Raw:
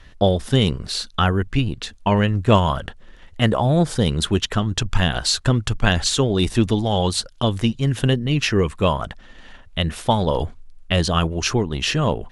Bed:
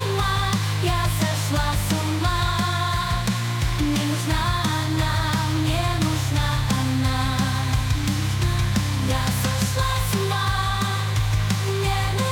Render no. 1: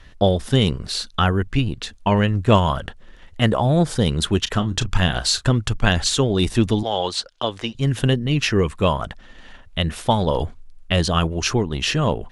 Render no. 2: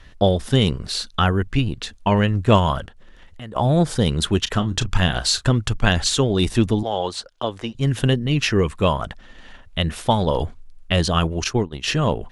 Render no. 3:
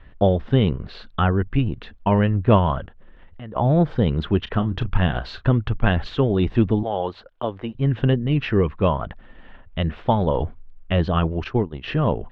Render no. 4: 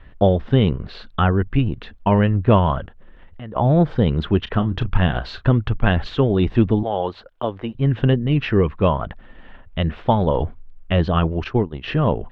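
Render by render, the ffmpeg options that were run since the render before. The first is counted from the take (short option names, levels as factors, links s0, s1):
-filter_complex "[0:a]asettb=1/sr,asplit=3[s0][s1][s2];[s0]atrim=end=4.434[s3];[s1]atrim=start=4.43:end=5.47,asetpts=PTS-STARTPTS,afade=t=in:d=0.004:c=qsin,afade=t=out:st=1.036:d=0.004:c=qsin,asplit=2[s4][s5];[s5]adelay=33,volume=0.224[s6];[s4][s6]amix=inputs=2:normalize=0,atrim=end_sample=45864[s7];[s2]atrim=start=5.466[s8];[s3][s7]acrossfade=d=0.004:c1=hsin:c2=qsin[s9];[s9][s8]acrossfade=d=0.004:c1=qsin:c2=hsin,asettb=1/sr,asplit=3[s10][s11][s12];[s10]atrim=end=6.834[s13];[s11]atrim=start=6.83:end=7.75,asetpts=PTS-STARTPTS,afade=t=in:d=0.004:c=qsin,afade=t=out:st=0.916:d=0.004:c=qsin,acrossover=split=340 7100:gain=0.178 1 0.126[s14][s15][s16];[s14][s15][s16]amix=inputs=3:normalize=0[s17];[s12]atrim=start=7.746[s18];[s13][s17]acrossfade=d=0.004:c1=hsin:c2=qsin[s19];[s19][s18]acrossfade=d=0.004:c1=qsin:c2=hsin"
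-filter_complex "[0:a]asettb=1/sr,asplit=3[s0][s1][s2];[s0]atrim=end=2.854[s3];[s1]atrim=start=2.85:end=3.56,asetpts=PTS-STARTPTS,afade=t=in:d=0.004:c=qsin,afade=t=out:st=0.706:d=0.004:c=qsin,acompressor=threshold=0.00891:ratio=2.5:attack=3.2:release=140:knee=1:detection=peak[s4];[s2]atrim=start=3.556[s5];[s3][s4]acrossfade=d=0.004:c1=hsin:c2=qsin[s6];[s6][s5]acrossfade=d=0.004:c1=qsin:c2=hsin,asettb=1/sr,asplit=3[s7][s8][s9];[s7]atrim=end=6.664[s10];[s8]atrim=start=6.66:end=7.81,asetpts=PTS-STARTPTS,afade=t=in:d=0.004:c=qsin,afade=t=out:st=1.146:d=0.004:c=qsin,equalizer=f=3800:t=o:w=2.3:g=-6[s11];[s9]atrim=start=7.806[s12];[s10][s11]acrossfade=d=0.004:c1=hsin:c2=qsin[s13];[s13][s12]acrossfade=d=0.004:c1=qsin:c2=hsin,asettb=1/sr,asplit=3[s14][s15][s16];[s14]atrim=end=11.444[s17];[s15]atrim=start=11.44:end=11.88,asetpts=PTS-STARTPTS,afade=t=in:d=0.004:c=qsin,afade=t=out:st=0.436:d=0.004:c=qsin,agate=range=0.0224:threshold=0.112:ratio=3:release=100:detection=peak[s18];[s16]atrim=start=11.876[s19];[s17][s18]acrossfade=d=0.004:c1=hsin:c2=qsin[s20];[s20][s19]acrossfade=d=0.004:c1=qsin:c2=hsin"
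-af "lowpass=f=3300:w=0.5412,lowpass=f=3300:w=1.3066,highshelf=f=2300:g=-11"
-af "volume=1.26,alimiter=limit=0.708:level=0:latency=1"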